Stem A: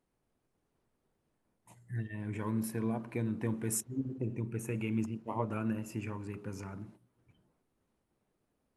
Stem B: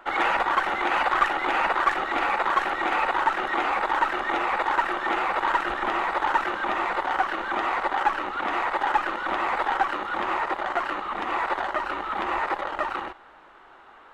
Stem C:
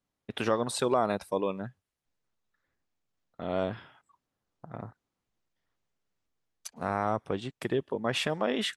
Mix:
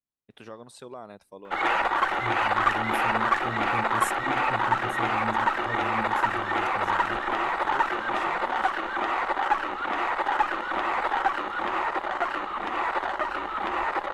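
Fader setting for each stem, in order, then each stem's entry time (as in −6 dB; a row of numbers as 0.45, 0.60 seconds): −2.0, −1.0, −15.0 decibels; 0.30, 1.45, 0.00 seconds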